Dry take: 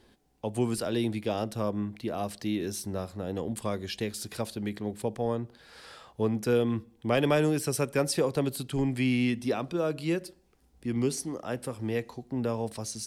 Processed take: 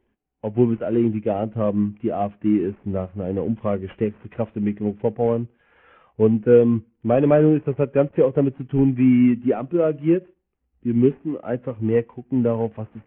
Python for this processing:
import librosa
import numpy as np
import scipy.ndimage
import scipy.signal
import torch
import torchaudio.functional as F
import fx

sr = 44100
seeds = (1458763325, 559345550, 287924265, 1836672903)

p1 = fx.cvsd(x, sr, bps=16000)
p2 = fx.rider(p1, sr, range_db=3, speed_s=0.5)
p3 = p1 + (p2 * librosa.db_to_amplitude(-1.5))
p4 = fx.spectral_expand(p3, sr, expansion=1.5)
y = p4 * librosa.db_to_amplitude(6.5)